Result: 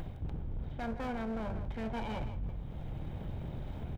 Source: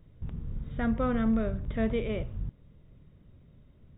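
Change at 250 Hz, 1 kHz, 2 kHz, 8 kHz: -9.5 dB, -2.0 dB, -5.5 dB, no reading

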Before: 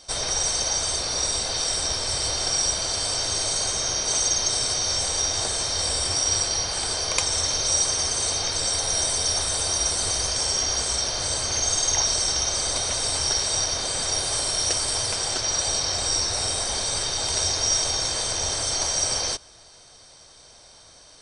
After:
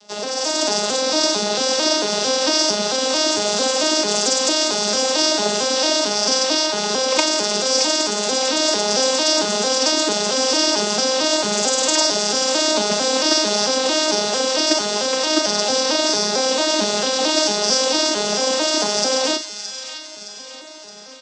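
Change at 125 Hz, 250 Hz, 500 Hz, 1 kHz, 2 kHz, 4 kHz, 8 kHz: -4.5 dB, +17.0 dB, +14.5 dB, +9.5 dB, +9.0 dB, +5.5 dB, +1.0 dB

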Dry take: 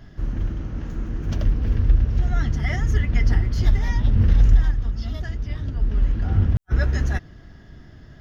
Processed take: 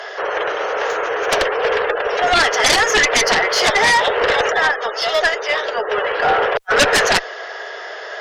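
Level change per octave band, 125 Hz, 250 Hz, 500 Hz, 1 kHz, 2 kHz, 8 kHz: -18.5 dB, -1.0 dB, +22.0 dB, +23.5 dB, +20.5 dB, no reading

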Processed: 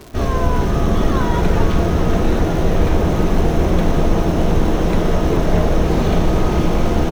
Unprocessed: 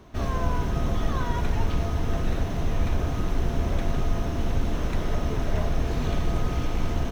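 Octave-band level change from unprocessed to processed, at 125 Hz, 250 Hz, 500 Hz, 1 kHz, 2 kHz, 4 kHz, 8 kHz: +9.0 dB, +13.5 dB, +14.0 dB, +11.0 dB, +9.5 dB, +9.0 dB, no reading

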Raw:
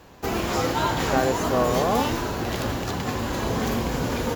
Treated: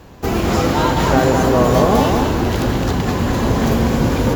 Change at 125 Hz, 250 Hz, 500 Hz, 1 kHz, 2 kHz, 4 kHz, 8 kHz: +11.5 dB, +10.5 dB, +8.0 dB, +7.0 dB, +6.0 dB, +5.0 dB, +4.5 dB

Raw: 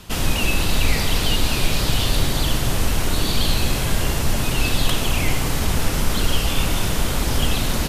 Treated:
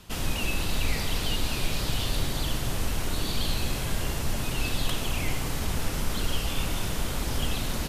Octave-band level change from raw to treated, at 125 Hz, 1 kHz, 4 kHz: -8.5 dB, -8.5 dB, -8.5 dB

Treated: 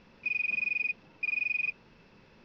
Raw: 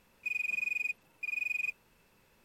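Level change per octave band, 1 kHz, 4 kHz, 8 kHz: no reading, +3.5 dB, under -15 dB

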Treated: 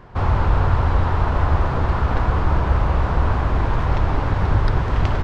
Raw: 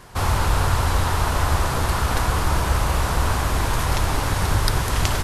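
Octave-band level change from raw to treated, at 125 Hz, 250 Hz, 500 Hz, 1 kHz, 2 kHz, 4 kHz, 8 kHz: +3.0 dB, +2.5 dB, +1.5 dB, -0.5 dB, -3.0 dB, -10.5 dB, under -20 dB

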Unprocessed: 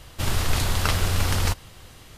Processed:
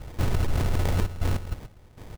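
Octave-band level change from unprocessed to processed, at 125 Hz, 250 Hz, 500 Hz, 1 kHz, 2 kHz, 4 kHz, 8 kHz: -1.0 dB, 0.0 dB, -1.0 dB, -7.0 dB, -9.0 dB, -13.0 dB, -13.5 dB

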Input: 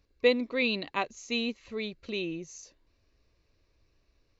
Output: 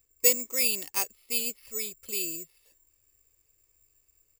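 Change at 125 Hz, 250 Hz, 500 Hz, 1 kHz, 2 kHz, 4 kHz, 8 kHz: -11.5 dB, -11.5 dB, -6.5 dB, -7.0 dB, -3.0 dB, +0.5 dB, no reading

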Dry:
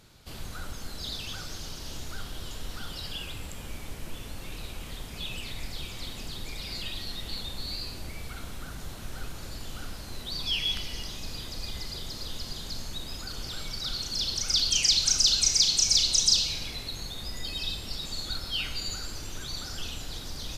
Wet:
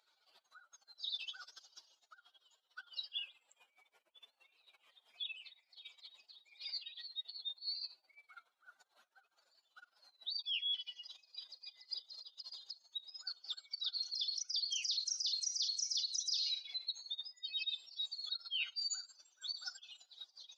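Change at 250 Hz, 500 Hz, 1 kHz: under -40 dB, under -30 dB, -19.5 dB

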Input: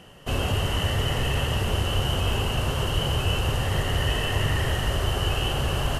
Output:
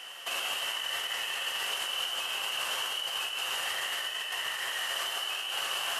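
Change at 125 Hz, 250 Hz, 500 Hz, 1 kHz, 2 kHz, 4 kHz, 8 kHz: under -40 dB, under -25 dB, -15.5 dB, -6.5 dB, -2.0 dB, -1.0 dB, -0.5 dB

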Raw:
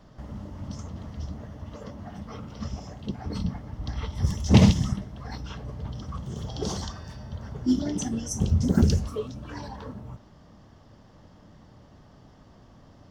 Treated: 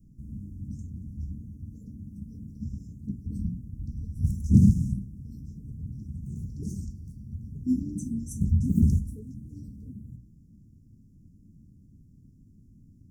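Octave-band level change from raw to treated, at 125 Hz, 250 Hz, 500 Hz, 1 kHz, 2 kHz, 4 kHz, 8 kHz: -1.0 dB, -1.5 dB, -18.5 dB, under -40 dB, under -40 dB, under -25 dB, -11.0 dB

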